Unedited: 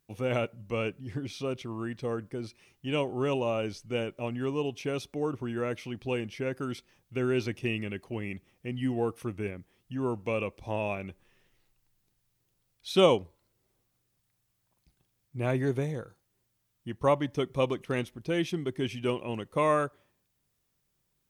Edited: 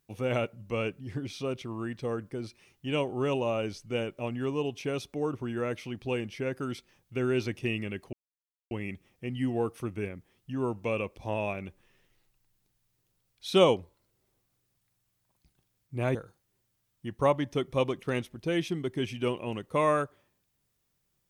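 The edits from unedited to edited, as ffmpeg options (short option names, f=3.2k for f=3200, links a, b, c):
-filter_complex "[0:a]asplit=3[a][b][c];[a]atrim=end=8.13,asetpts=PTS-STARTPTS,afade=t=out:st=8.126:d=0.004:c=hsin,apad=pad_dur=0.58[d];[b]atrim=start=8.13:end=15.572,asetpts=PTS-STARTPTS,afade=t=in:d=0.004:c=hsin[e];[c]atrim=start=15.968[f];[d][e]concat=n=2:v=0:a=1[g];[g][f]acrossfade=d=0.004:c1=hsin:c2=hsin"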